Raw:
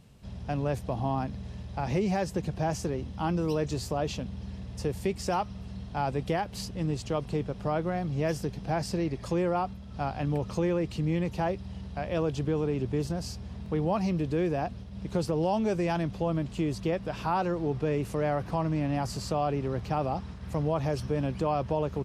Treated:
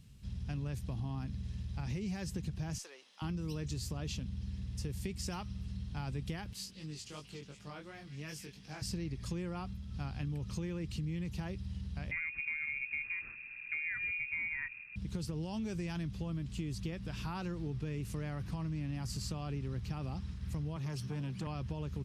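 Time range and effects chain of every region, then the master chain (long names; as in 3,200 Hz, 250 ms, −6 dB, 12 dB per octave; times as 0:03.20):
0:02.78–0:03.22: high-pass filter 580 Hz 24 dB per octave + high-shelf EQ 9,500 Hz −6 dB
0:06.53–0:08.82: high-pass filter 560 Hz 6 dB per octave + echo through a band-pass that steps 182 ms, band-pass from 2,800 Hz, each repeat 0.7 octaves, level −7 dB + chorus effect 2.8 Hz, delay 19 ms, depth 3.2 ms
0:12.11–0:14.96: variable-slope delta modulation 32 kbit/s + high-pass filter 120 Hz + voice inversion scrambler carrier 2,600 Hz
0:20.76–0:21.47: high-pass filter 110 Hz 24 dB per octave + saturating transformer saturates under 560 Hz
whole clip: guitar amp tone stack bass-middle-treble 6-0-2; downward compressor, threshold −48 dBFS; level +13.5 dB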